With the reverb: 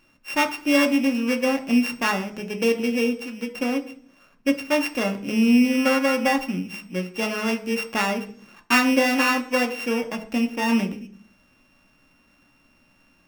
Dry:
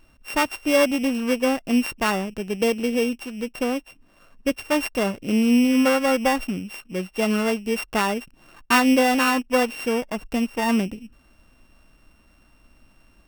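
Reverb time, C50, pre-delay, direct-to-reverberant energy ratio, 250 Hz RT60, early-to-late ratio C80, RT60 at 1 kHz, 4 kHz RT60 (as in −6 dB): 0.50 s, 14.0 dB, 3 ms, 4.5 dB, 0.80 s, 17.5 dB, 0.45 s, 0.80 s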